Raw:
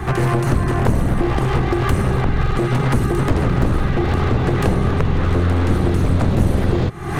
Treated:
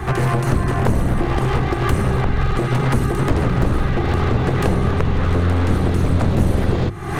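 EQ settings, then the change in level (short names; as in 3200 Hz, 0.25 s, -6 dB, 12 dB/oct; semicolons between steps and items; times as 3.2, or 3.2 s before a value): notches 50/100/150/200/250/300/350 Hz; 0.0 dB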